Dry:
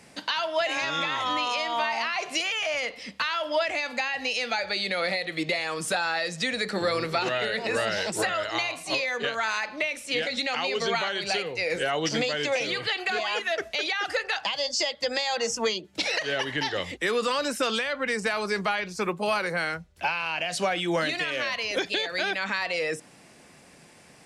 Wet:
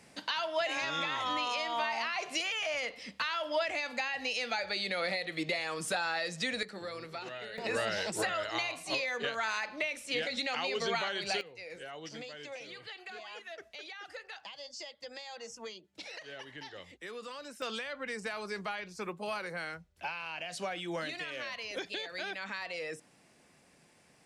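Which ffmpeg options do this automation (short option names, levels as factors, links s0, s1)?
-af "asetnsamples=n=441:p=0,asendcmd='6.63 volume volume -15.5dB;7.58 volume volume -6dB;11.41 volume volume -18dB;17.62 volume volume -11dB',volume=0.501"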